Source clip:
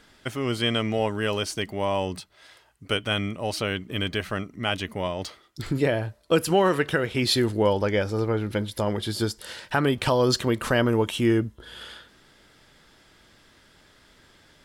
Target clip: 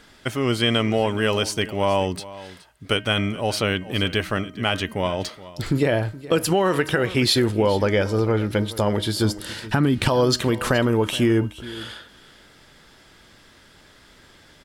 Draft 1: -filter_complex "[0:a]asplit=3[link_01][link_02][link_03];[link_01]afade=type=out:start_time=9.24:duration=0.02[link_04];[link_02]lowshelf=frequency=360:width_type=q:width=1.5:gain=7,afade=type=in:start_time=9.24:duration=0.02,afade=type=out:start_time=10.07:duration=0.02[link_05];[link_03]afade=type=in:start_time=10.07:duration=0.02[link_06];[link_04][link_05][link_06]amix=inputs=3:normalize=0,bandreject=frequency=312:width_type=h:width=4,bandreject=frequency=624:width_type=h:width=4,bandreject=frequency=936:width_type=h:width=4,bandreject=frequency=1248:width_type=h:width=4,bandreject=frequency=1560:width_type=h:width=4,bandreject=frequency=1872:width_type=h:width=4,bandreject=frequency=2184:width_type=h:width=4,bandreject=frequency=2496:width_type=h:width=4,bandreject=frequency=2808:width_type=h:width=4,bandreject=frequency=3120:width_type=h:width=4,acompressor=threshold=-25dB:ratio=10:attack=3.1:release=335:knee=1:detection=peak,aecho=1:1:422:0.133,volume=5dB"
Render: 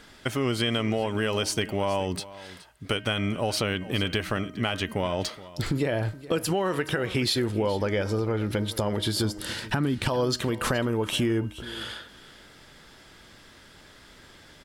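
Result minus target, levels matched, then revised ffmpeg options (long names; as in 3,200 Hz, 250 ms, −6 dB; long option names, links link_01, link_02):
downward compressor: peak gain reduction +6.5 dB
-filter_complex "[0:a]asplit=3[link_01][link_02][link_03];[link_01]afade=type=out:start_time=9.24:duration=0.02[link_04];[link_02]lowshelf=frequency=360:width_type=q:width=1.5:gain=7,afade=type=in:start_time=9.24:duration=0.02,afade=type=out:start_time=10.07:duration=0.02[link_05];[link_03]afade=type=in:start_time=10.07:duration=0.02[link_06];[link_04][link_05][link_06]amix=inputs=3:normalize=0,bandreject=frequency=312:width_type=h:width=4,bandreject=frequency=624:width_type=h:width=4,bandreject=frequency=936:width_type=h:width=4,bandreject=frequency=1248:width_type=h:width=4,bandreject=frequency=1560:width_type=h:width=4,bandreject=frequency=1872:width_type=h:width=4,bandreject=frequency=2184:width_type=h:width=4,bandreject=frequency=2496:width_type=h:width=4,bandreject=frequency=2808:width_type=h:width=4,bandreject=frequency=3120:width_type=h:width=4,acompressor=threshold=-17.5dB:ratio=10:attack=3.1:release=335:knee=1:detection=peak,aecho=1:1:422:0.133,volume=5dB"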